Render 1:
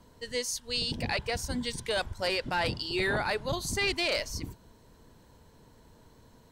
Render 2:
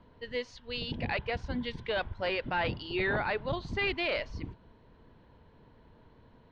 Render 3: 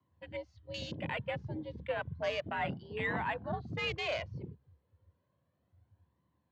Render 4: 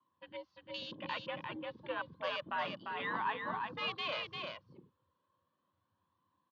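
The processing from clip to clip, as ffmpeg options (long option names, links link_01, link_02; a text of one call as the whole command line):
ffmpeg -i in.wav -af "lowpass=frequency=3300:width=0.5412,lowpass=frequency=3300:width=1.3066,volume=-1dB" out.wav
ffmpeg -i in.wav -af "afwtdn=0.0112,flanger=delay=1:depth=1.6:regen=41:speed=0.32:shape=triangular,afreqshift=68" out.wav
ffmpeg -i in.wav -af "highpass=290,equalizer=frequency=430:width_type=q:width=4:gain=-7,equalizer=frequency=690:width_type=q:width=4:gain=-10,equalizer=frequency=1100:width_type=q:width=4:gain=10,equalizer=frequency=2100:width_type=q:width=4:gain=-7,equalizer=frequency=3400:width_type=q:width=4:gain=4,lowpass=frequency=4800:width=0.5412,lowpass=frequency=4800:width=1.3066,aecho=1:1:347:0.596,volume=-1dB" out.wav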